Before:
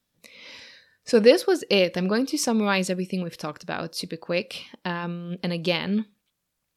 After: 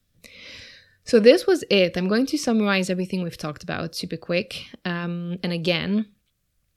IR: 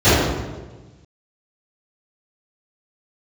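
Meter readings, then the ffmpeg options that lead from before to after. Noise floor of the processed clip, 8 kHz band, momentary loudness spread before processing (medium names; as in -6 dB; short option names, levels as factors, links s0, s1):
-71 dBFS, -2.5 dB, 19 LU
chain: -filter_complex "[0:a]equalizer=f=910:t=o:w=0.25:g=-14.5,acrossover=split=110|4400[s0][s1][s2];[s0]aeval=exprs='0.0112*sin(PI/2*3.55*val(0)/0.0112)':c=same[s3];[s2]alimiter=level_in=1.5:limit=0.0631:level=0:latency=1:release=245,volume=0.668[s4];[s3][s1][s4]amix=inputs=3:normalize=0,volume=1.33"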